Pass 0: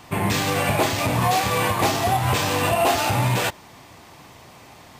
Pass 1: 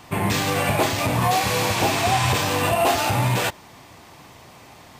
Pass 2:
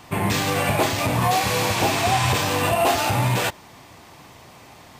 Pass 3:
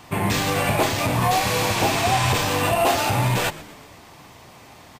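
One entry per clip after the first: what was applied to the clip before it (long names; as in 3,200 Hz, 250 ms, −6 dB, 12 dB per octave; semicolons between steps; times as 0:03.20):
healed spectral selection 0:01.42–0:02.30, 1,000–12,000 Hz
no processing that can be heard
echo with shifted repeats 122 ms, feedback 54%, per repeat −140 Hz, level −18 dB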